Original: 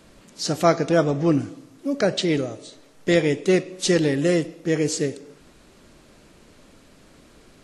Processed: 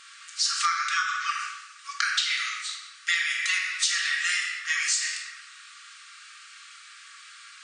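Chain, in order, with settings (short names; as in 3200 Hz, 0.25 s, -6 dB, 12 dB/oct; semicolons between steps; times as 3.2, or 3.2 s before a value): shoebox room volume 610 m³, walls mixed, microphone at 1.7 m; FFT band-pass 1100–9600 Hz; compressor 6:1, threshold -30 dBFS, peak gain reduction 11.5 dB; gain +7.5 dB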